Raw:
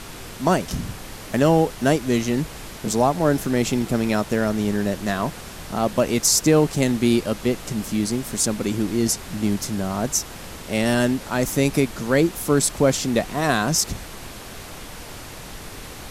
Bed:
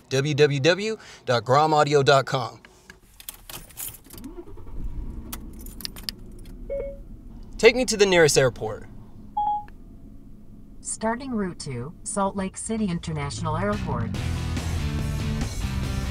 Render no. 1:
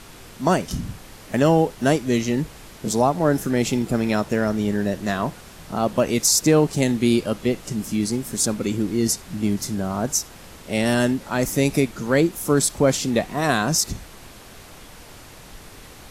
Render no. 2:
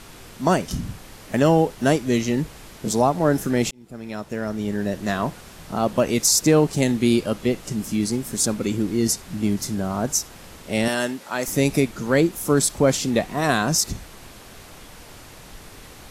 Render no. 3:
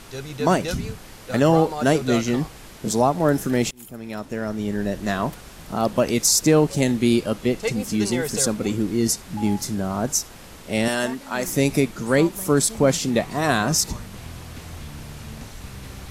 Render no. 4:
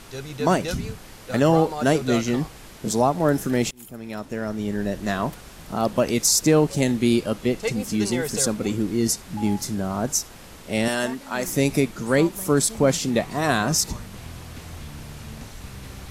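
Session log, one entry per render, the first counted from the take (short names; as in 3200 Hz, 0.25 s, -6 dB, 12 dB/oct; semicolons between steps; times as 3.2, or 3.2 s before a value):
noise print and reduce 6 dB
3.71–5.13 fade in; 10.88–11.48 HPF 570 Hz 6 dB/oct
add bed -11 dB
gain -1 dB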